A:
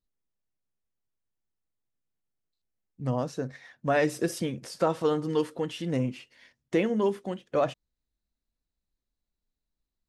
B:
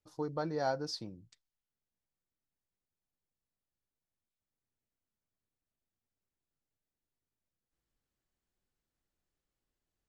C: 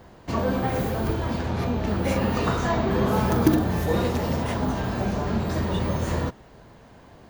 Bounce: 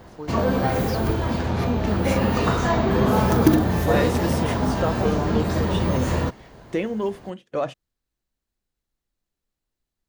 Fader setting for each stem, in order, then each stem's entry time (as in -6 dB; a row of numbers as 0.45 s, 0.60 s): 0.0 dB, +1.0 dB, +3.0 dB; 0.00 s, 0.00 s, 0.00 s